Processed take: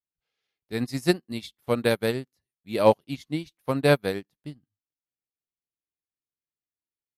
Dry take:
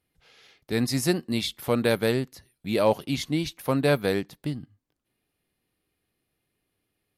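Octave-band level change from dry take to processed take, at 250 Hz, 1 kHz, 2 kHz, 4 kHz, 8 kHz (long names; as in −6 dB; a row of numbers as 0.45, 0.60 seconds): −2.0, +2.0, 0.0, −3.5, −7.0 decibels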